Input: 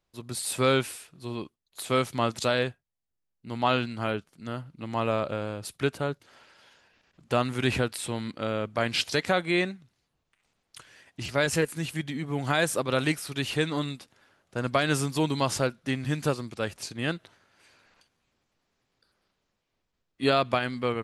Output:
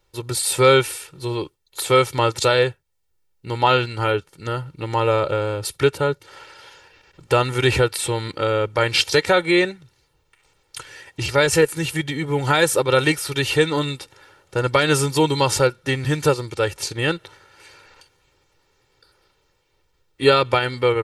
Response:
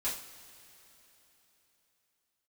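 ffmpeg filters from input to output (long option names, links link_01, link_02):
-filter_complex "[0:a]aecho=1:1:2.2:0.79,asplit=2[link_01][link_02];[link_02]acompressor=threshold=-37dB:ratio=6,volume=-1.5dB[link_03];[link_01][link_03]amix=inputs=2:normalize=0,volume=5.5dB"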